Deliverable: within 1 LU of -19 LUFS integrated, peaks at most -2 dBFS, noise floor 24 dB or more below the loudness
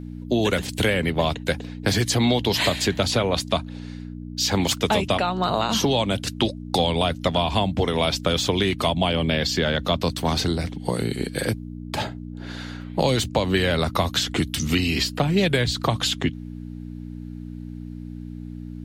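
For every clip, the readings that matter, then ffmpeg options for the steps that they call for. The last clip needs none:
hum 60 Hz; harmonics up to 300 Hz; hum level -33 dBFS; loudness -23.0 LUFS; peak -8.0 dBFS; loudness target -19.0 LUFS
-> -af "bandreject=f=60:t=h:w=4,bandreject=f=120:t=h:w=4,bandreject=f=180:t=h:w=4,bandreject=f=240:t=h:w=4,bandreject=f=300:t=h:w=4"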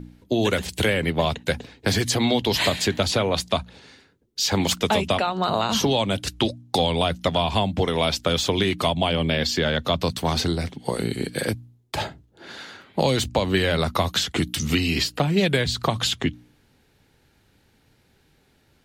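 hum none; loudness -23.0 LUFS; peak -8.0 dBFS; loudness target -19.0 LUFS
-> -af "volume=4dB"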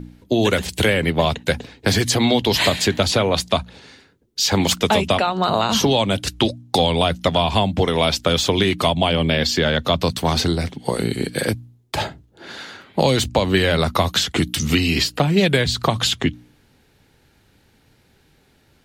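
loudness -19.0 LUFS; peak -4.0 dBFS; noise floor -58 dBFS

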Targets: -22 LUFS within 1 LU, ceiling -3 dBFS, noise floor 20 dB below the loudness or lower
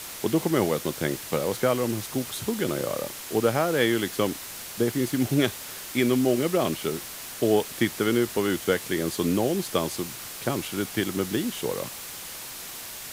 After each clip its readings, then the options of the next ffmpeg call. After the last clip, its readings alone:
noise floor -39 dBFS; noise floor target -47 dBFS; loudness -26.5 LUFS; peak -9.0 dBFS; loudness target -22.0 LUFS
-> -af "afftdn=nr=8:nf=-39"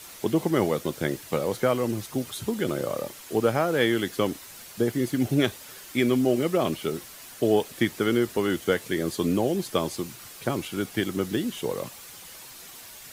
noise floor -45 dBFS; noise floor target -47 dBFS
-> -af "afftdn=nr=6:nf=-45"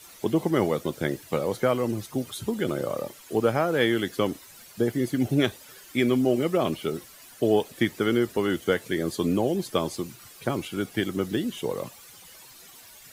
noise floor -49 dBFS; loudness -26.5 LUFS; peak -9.0 dBFS; loudness target -22.0 LUFS
-> -af "volume=4.5dB"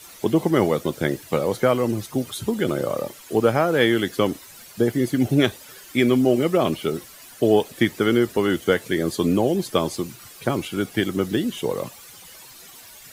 loudness -22.0 LUFS; peak -4.5 dBFS; noise floor -45 dBFS

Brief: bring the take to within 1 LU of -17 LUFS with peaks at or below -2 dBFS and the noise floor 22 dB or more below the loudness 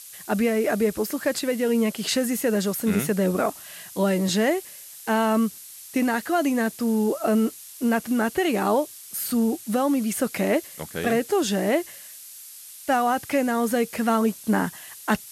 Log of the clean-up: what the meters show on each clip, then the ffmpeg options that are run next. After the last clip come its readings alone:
noise floor -43 dBFS; noise floor target -46 dBFS; loudness -24.0 LUFS; peak -8.0 dBFS; loudness target -17.0 LUFS
-> -af "afftdn=nr=6:nf=-43"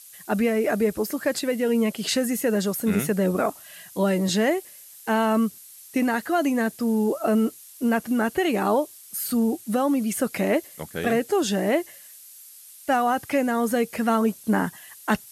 noise floor -47 dBFS; loudness -24.0 LUFS; peak -8.0 dBFS; loudness target -17.0 LUFS
-> -af "volume=7dB,alimiter=limit=-2dB:level=0:latency=1"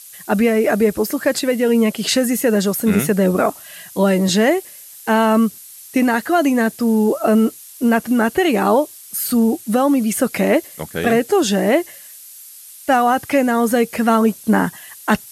loudness -17.0 LUFS; peak -2.0 dBFS; noise floor -40 dBFS

